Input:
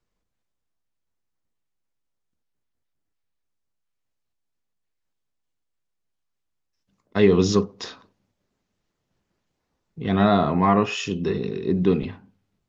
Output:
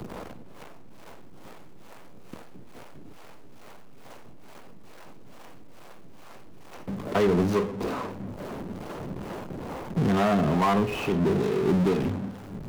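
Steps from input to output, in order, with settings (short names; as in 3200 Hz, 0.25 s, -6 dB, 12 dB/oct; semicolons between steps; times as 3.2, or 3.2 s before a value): median filter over 25 samples; harmonic tremolo 2.3 Hz, depth 70%, crossover 440 Hz; power-law curve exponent 0.5; three-band squash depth 70%; gain -4 dB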